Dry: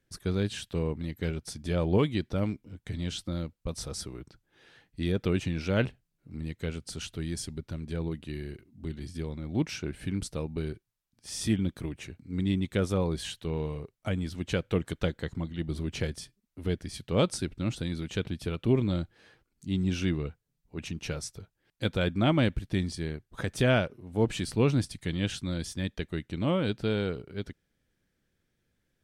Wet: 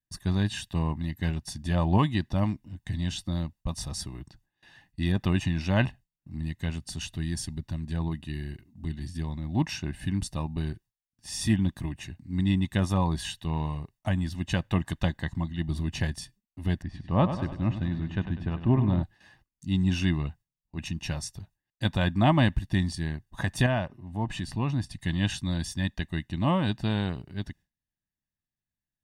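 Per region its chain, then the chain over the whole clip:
16.82–19.03 LPF 1900 Hz + feedback echo 99 ms, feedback 57%, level -10 dB
23.66–25 high shelf 5100 Hz -9 dB + compressor 1.5:1, threshold -36 dBFS
whole clip: gate with hold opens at -50 dBFS; dynamic EQ 1000 Hz, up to +5 dB, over -42 dBFS, Q 0.83; comb 1.1 ms, depth 80%

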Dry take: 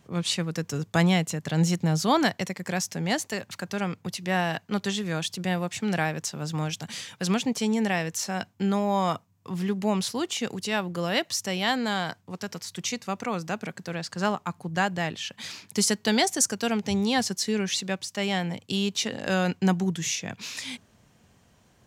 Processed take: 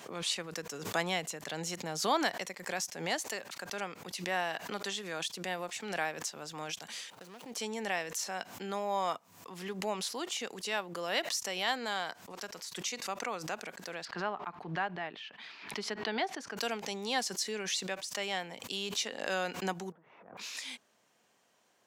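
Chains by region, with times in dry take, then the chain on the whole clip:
7.1–7.55 median filter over 25 samples + high shelf 5400 Hz +7 dB + compressor, threshold -34 dBFS
14.05–16.57 air absorption 360 m + notch 530 Hz, Q 5.6 + mismatched tape noise reduction encoder only
19.92–20.37 zero-crossing step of -30.5 dBFS + LPF 1200 Hz 24 dB/oct + compressor 16:1, threshold -43 dBFS
whole clip: HPF 420 Hz 12 dB/oct; backwards sustainer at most 78 dB/s; gain -6 dB

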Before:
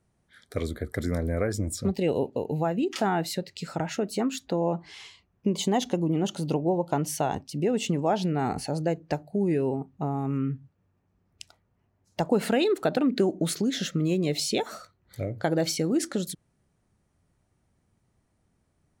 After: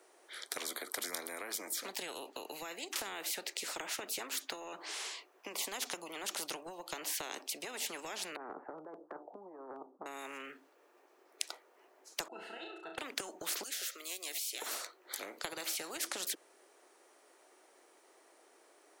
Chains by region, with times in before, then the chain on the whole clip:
8.36–10.06 Bessel low-pass 630 Hz, order 8 + negative-ratio compressor -30 dBFS, ratio -0.5
12.28–12.98 octave resonator E, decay 0.19 s + flutter echo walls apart 5.8 m, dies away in 0.4 s
13.63–14.62 differentiator + compressor 3:1, threshold -39 dBFS
whole clip: steep high-pass 340 Hz 48 dB/oct; compressor, threshold -28 dBFS; spectral compressor 4:1; gain +3 dB

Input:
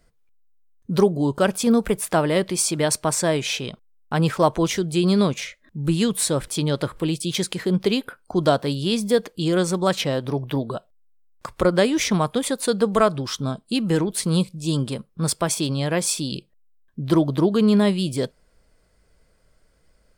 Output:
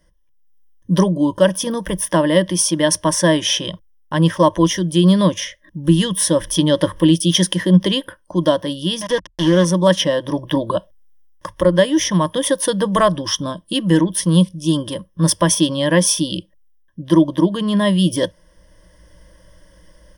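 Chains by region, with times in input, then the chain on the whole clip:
9.01–9.65 sample gate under -24 dBFS + air absorption 75 m + mismatched tape noise reduction encoder only
whole clip: ripple EQ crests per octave 1.2, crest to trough 16 dB; AGC; gain -1 dB

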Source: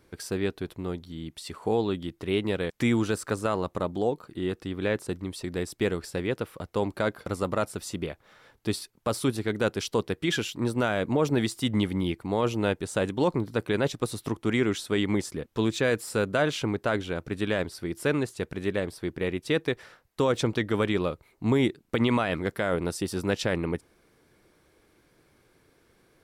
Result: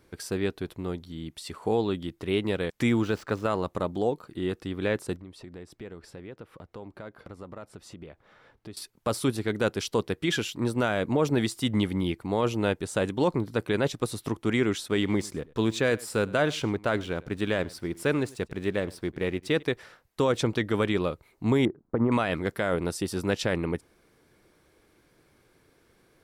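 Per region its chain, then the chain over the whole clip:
2.89–3.5 median filter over 5 samples + high shelf 6200 Hz -4.5 dB
5.16–8.77 LPF 2200 Hz 6 dB/oct + compressor 2.5:1, threshold -45 dBFS
14.88–19.63 backlash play -50 dBFS + echo 99 ms -22 dB
21.65–22.12 sample sorter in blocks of 8 samples + LPF 1300 Hz 24 dB/oct
whole clip: dry

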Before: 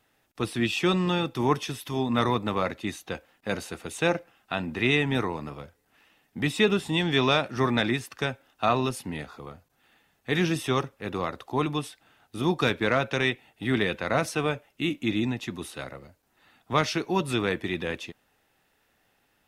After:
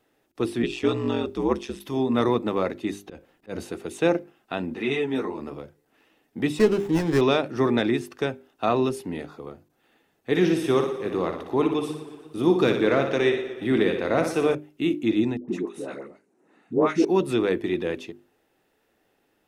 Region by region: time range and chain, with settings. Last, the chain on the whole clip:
0.62–1.79 LPF 10000 Hz 24 dB/oct + ring modulator 65 Hz + added noise pink -68 dBFS
3.03–3.72 auto swell 0.156 s + low shelf 140 Hz +10 dB
4.74–5.4 HPF 160 Hz 6 dB/oct + ensemble effect
6.59–7.21 doubler 13 ms -12 dB + running maximum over 9 samples
10.3–14.55 flutter echo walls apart 10.2 m, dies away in 0.5 s + warbling echo 0.119 s, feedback 63%, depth 76 cents, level -14.5 dB
15.37–17.05 speaker cabinet 180–9900 Hz, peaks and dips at 190 Hz +8 dB, 290 Hz +4 dB, 410 Hz +5 dB, 3300 Hz -9 dB, 4700 Hz -8 dB + dispersion highs, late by 0.119 s, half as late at 690 Hz
whole clip: bell 360 Hz +11.5 dB 1.5 oct; notches 50/100/150/200/250/300/350/400 Hz; gain -3.5 dB

